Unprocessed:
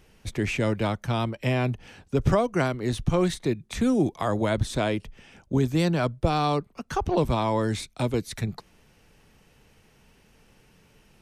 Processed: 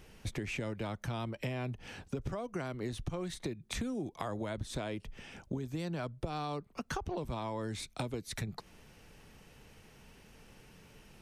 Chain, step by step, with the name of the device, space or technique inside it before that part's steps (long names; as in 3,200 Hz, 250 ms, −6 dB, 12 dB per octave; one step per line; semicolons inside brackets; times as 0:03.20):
serial compression, leveller first (downward compressor 2 to 1, threshold −26 dBFS, peak gain reduction 6.5 dB; downward compressor 6 to 1, threshold −36 dBFS, peak gain reduction 14.5 dB)
level +1 dB